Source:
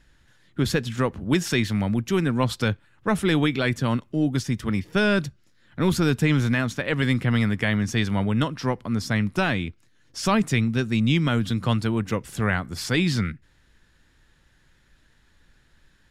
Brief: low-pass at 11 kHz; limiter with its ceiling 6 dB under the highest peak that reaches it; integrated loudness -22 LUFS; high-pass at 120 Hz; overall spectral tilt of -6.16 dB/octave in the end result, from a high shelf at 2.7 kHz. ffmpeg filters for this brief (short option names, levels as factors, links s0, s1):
-af "highpass=120,lowpass=11000,highshelf=f=2700:g=-8.5,volume=1.78,alimiter=limit=0.299:level=0:latency=1"